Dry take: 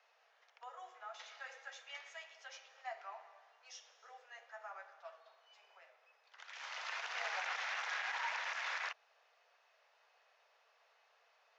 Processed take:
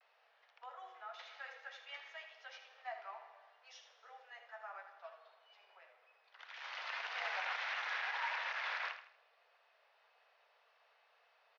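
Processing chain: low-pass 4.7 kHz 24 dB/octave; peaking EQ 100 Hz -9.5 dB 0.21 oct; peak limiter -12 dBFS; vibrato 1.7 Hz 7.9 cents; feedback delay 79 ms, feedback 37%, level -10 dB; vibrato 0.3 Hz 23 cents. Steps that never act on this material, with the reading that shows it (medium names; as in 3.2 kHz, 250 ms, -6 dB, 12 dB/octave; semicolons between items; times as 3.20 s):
peaking EQ 100 Hz: input has nothing below 380 Hz; peak limiter -12 dBFS: peak at its input -26.0 dBFS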